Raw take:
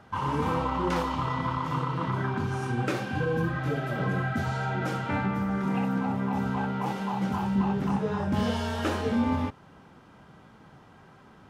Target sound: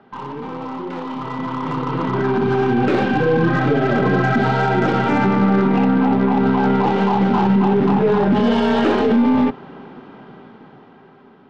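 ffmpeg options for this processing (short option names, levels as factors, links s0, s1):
-af "highpass=f=130:w=0.5412,highpass=f=130:w=1.3066,equalizer=f=250:t=q:w=4:g=8,equalizer=f=400:t=q:w=4:g=10,equalizer=f=790:t=q:w=4:g=4,lowpass=f=4000:w=0.5412,lowpass=f=4000:w=1.3066,alimiter=limit=0.0794:level=0:latency=1:release=38,aeval=exprs='0.0794*(cos(1*acos(clip(val(0)/0.0794,-1,1)))-cos(1*PI/2))+0.00398*(cos(6*acos(clip(val(0)/0.0794,-1,1)))-cos(6*PI/2))':c=same,dynaudnorm=f=440:g=9:m=4.73"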